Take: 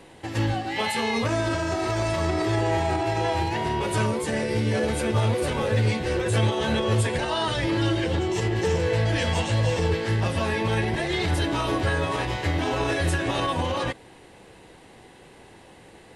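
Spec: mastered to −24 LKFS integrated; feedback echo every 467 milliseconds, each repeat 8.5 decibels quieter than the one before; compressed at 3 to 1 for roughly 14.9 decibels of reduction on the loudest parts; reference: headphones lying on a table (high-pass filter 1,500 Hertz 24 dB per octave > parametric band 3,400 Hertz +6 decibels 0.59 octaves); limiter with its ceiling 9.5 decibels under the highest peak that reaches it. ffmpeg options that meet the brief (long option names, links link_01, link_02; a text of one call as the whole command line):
ffmpeg -i in.wav -af "acompressor=threshold=-40dB:ratio=3,alimiter=level_in=11.5dB:limit=-24dB:level=0:latency=1,volume=-11.5dB,highpass=frequency=1500:width=0.5412,highpass=frequency=1500:width=1.3066,equalizer=frequency=3400:width_type=o:width=0.59:gain=6,aecho=1:1:467|934|1401|1868:0.376|0.143|0.0543|0.0206,volume=24dB" out.wav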